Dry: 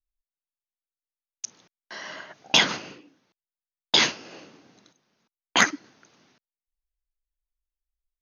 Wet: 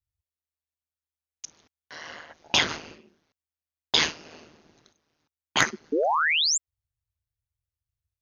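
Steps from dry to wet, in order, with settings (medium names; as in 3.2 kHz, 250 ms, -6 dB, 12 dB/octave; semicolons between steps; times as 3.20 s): painted sound rise, 5.92–6.58 s, 340–7700 Hz -20 dBFS; ring modulator 78 Hz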